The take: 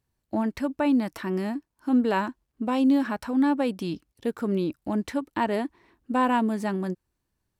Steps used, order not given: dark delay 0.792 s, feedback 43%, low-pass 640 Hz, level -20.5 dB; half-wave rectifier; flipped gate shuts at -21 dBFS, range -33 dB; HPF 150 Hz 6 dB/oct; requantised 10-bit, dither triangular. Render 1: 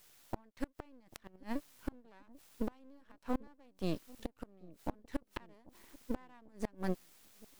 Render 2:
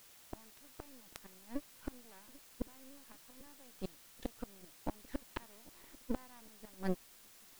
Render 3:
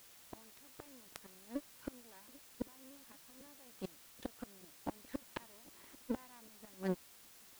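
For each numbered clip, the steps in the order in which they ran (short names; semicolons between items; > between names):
HPF > requantised > flipped gate > half-wave rectifier > dark delay; flipped gate > HPF > half-wave rectifier > dark delay > requantised; flipped gate > half-wave rectifier > HPF > requantised > dark delay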